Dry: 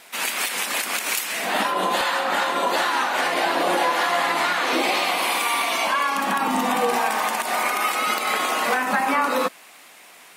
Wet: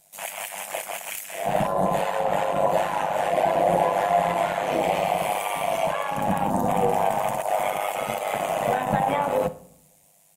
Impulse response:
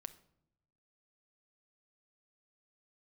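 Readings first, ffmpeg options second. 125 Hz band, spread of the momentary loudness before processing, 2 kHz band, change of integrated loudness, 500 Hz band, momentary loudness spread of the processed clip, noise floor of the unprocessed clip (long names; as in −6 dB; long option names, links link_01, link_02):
+11.5 dB, 3 LU, −10.0 dB, −3.0 dB, +3.5 dB, 9 LU, −47 dBFS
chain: -filter_complex "[0:a]afwtdn=0.0562,firequalizer=gain_entry='entry(160,0);entry(240,-19);entry(380,-22);entry(620,-8);entry(1200,-28);entry(6700,7);entry(11000,6)':delay=0.05:min_phase=1,asoftclip=type=tanh:threshold=-27.5dB,tremolo=f=100:d=0.71,asplit=2[link_01][link_02];[1:a]atrim=start_sample=2205,lowpass=3100[link_03];[link_02][link_03]afir=irnorm=-1:irlink=0,volume=12.5dB[link_04];[link_01][link_04]amix=inputs=2:normalize=0,volume=8.5dB"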